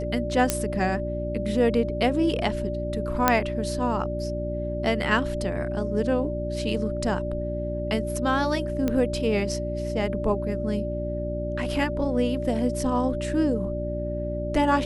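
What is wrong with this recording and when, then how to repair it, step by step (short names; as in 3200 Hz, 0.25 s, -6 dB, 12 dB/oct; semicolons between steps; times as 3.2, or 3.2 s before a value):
hum 60 Hz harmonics 6 -31 dBFS
tone 590 Hz -30 dBFS
0.5 pop -5 dBFS
3.28 pop -3 dBFS
8.88 pop -13 dBFS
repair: de-click; de-hum 60 Hz, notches 6; notch 590 Hz, Q 30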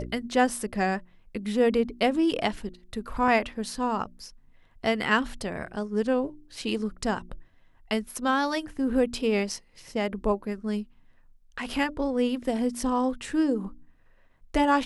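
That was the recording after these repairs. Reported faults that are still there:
none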